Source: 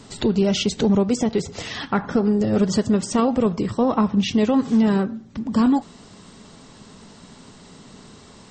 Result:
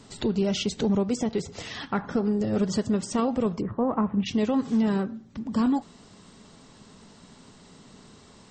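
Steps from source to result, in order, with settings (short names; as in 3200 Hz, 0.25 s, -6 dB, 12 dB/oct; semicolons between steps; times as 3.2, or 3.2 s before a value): 3.6–4.25 LPF 1600 Hz -> 2500 Hz 24 dB/oct; gain -6 dB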